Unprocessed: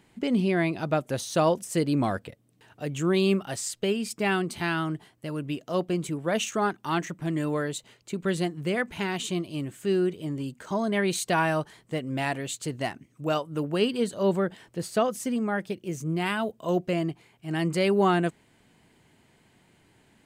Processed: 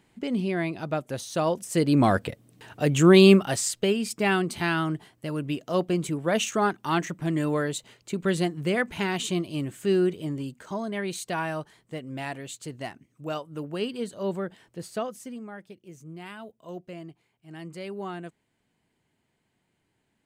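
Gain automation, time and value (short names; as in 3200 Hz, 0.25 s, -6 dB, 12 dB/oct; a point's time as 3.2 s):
1.45 s -3 dB
2.26 s +9 dB
3.25 s +9 dB
3.94 s +2 dB
10.17 s +2 dB
10.92 s -5.5 dB
14.92 s -5.5 dB
15.56 s -13.5 dB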